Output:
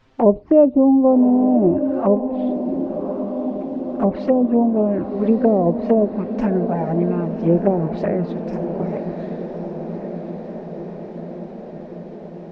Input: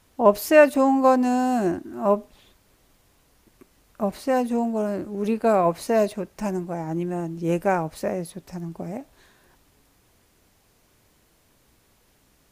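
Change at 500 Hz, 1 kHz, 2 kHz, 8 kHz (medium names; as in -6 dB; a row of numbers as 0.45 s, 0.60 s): +4.0 dB, -2.0 dB, -11.0 dB, under -20 dB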